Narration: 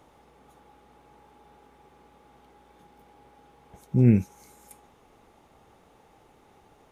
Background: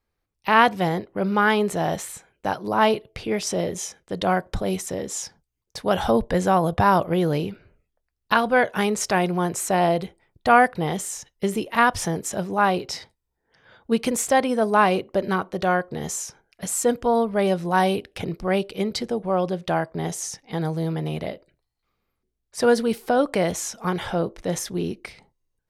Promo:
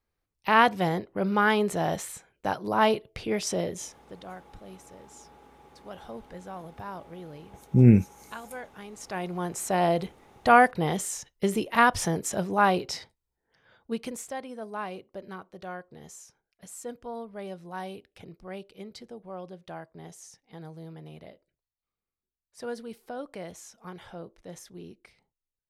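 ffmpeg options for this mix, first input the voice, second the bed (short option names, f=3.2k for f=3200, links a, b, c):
-filter_complex "[0:a]adelay=3800,volume=2dB[a];[1:a]volume=16dB,afade=t=out:st=3.53:d=0.71:silence=0.125893,afade=t=in:st=8.91:d=1.21:silence=0.105925,afade=t=out:st=12.71:d=1.64:silence=0.16788[b];[a][b]amix=inputs=2:normalize=0"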